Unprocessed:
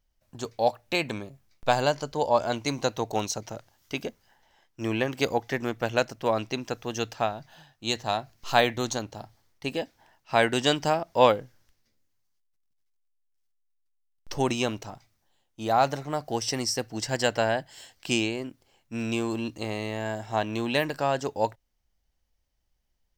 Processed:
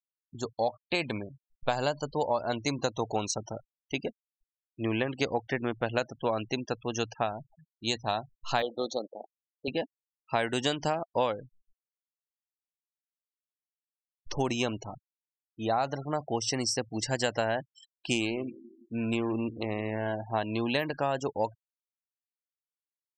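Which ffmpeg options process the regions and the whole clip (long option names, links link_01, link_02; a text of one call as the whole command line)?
ffmpeg -i in.wav -filter_complex "[0:a]asettb=1/sr,asplit=3[link_01][link_02][link_03];[link_01]atrim=end=8.624[link_04];[link_02]atrim=start=8.62:end=9.68,asetpts=PTS-STARTPTS,afade=type=in:duration=0.004:curve=qsin,afade=type=out:start_time=1.056:duration=0.004:curve=qsin,tremolo=f=300:d=0.333,asuperstop=centerf=2000:order=20:qfactor=1.2,highpass=290,equalizer=frequency=510:width_type=q:width=4:gain=7,equalizer=frequency=1000:width_type=q:width=4:gain=-8,equalizer=frequency=2800:width_type=q:width=4:gain=-4,lowpass=frequency=4900:width=0.5412,lowpass=frequency=4900:width=1.3066[link_05];[link_03]atrim=start=9.676[link_06];[link_04][link_05]acrossfade=duration=0.004:curve1=hsin:curve2=qsin[link_07];[link_07][link_06]acrossfade=duration=0.004:curve1=qsin:curve2=hsin,asettb=1/sr,asplit=3[link_08][link_09][link_10];[link_08]atrim=end=18.144[link_11];[link_09]atrim=start=18.14:end=20.23,asetpts=PTS-STARTPTS,afade=type=in:duration=0.004:curve=qsin,afade=type=out:start_time=2.086:duration=0.004:curve=qsin,adynamicsmooth=sensitivity=7.5:basefreq=500,aecho=1:1:167|334|501|668|835:0.119|0.0701|0.0414|0.0244|0.0144,atrim=end_sample=92169[link_12];[link_10]atrim=start=20.226[link_13];[link_11][link_12]acrossfade=duration=0.004:curve1=hsin:curve2=qsin[link_14];[link_14][link_13]acrossfade=duration=0.004:curve1=qsin:curve2=hsin,afftfilt=real='re*gte(hypot(re,im),0.0141)':imag='im*gte(hypot(re,im),0.0141)':win_size=1024:overlap=0.75,acompressor=threshold=-24dB:ratio=6,bandreject=frequency=5000:width=22" out.wav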